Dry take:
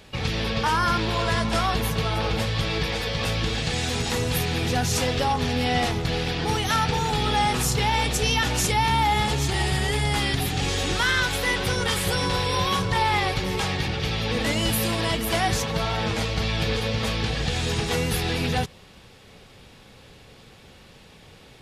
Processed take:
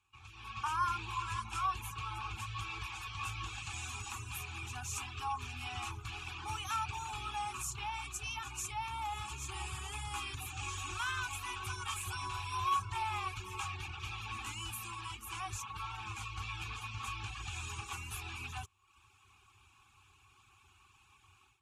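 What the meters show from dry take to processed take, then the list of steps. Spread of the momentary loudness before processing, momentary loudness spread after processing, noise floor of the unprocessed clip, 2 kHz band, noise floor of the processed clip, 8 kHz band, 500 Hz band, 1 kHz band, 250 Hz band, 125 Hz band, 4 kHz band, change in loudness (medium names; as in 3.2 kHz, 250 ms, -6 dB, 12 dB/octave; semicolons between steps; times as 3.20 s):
4 LU, 6 LU, -49 dBFS, -15.5 dB, -66 dBFS, -13.0 dB, -31.5 dB, -12.5 dB, -28.5 dB, -19.0 dB, -18.0 dB, -15.5 dB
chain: elliptic band-stop 380–880 Hz, stop band 40 dB; reverb removal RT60 0.69 s; FFT filter 100 Hz 0 dB, 170 Hz -25 dB, 1.5 kHz -16 dB, 2.4 kHz -18 dB, 4.8 kHz -18 dB, 6.9 kHz 0 dB; level rider gain up to 16 dB; vowel filter a; trim +5.5 dB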